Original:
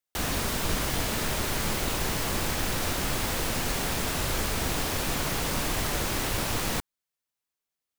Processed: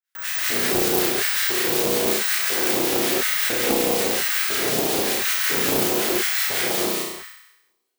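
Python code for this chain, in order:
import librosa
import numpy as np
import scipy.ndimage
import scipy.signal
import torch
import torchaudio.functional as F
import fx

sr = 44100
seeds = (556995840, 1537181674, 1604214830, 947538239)

p1 = fx.harmonic_tremolo(x, sr, hz=5.4, depth_pct=100, crossover_hz=1200.0)
p2 = (np.kron(p1[::2], np.eye(2)[0]) * 2)[:len(p1)]
p3 = p2 + fx.room_flutter(p2, sr, wall_m=5.7, rt60_s=0.92, dry=0)
p4 = fx.filter_lfo_highpass(p3, sr, shape='square', hz=1.0, low_hz=380.0, high_hz=1600.0, q=3.0)
p5 = fx.peak_eq(p4, sr, hz=110.0, db=11.5, octaves=1.5)
p6 = fx.rev_gated(p5, sr, seeds[0], gate_ms=240, shape='rising', drr_db=-5.5)
p7 = fx.dynamic_eq(p6, sr, hz=1300.0, q=0.89, threshold_db=-35.0, ratio=4.0, max_db=-5)
y = fx.doppler_dist(p7, sr, depth_ms=0.49)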